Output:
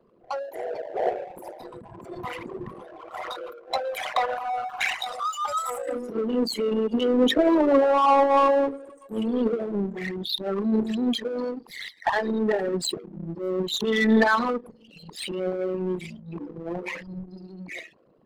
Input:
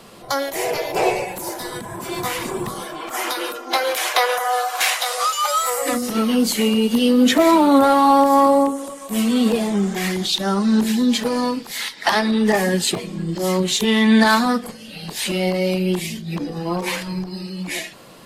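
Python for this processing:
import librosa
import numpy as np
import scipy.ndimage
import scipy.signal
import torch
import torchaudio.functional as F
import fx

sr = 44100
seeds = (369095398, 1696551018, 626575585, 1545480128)

y = fx.envelope_sharpen(x, sr, power=3.0)
y = fx.power_curve(y, sr, exponent=1.4)
y = y * librosa.db_to_amplitude(-2.5)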